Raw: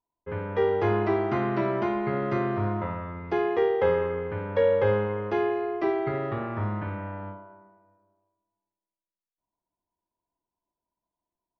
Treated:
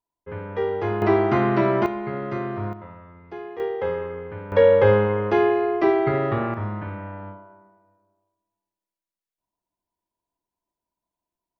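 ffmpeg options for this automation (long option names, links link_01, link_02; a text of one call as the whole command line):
ffmpeg -i in.wav -af "asetnsamples=nb_out_samples=441:pad=0,asendcmd='1.02 volume volume 6.5dB;1.86 volume volume -1.5dB;2.73 volume volume -10dB;3.6 volume volume -3dB;4.52 volume volume 7dB;6.54 volume volume 0.5dB',volume=-1dB" out.wav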